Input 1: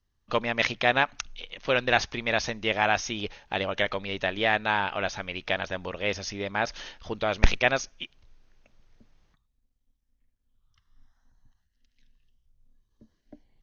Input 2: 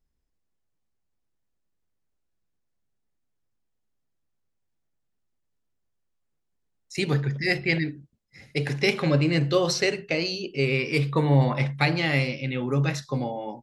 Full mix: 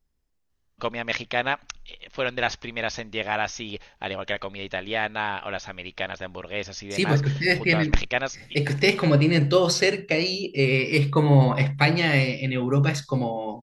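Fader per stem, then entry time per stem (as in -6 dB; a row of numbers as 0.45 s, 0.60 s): -2.0 dB, +3.0 dB; 0.50 s, 0.00 s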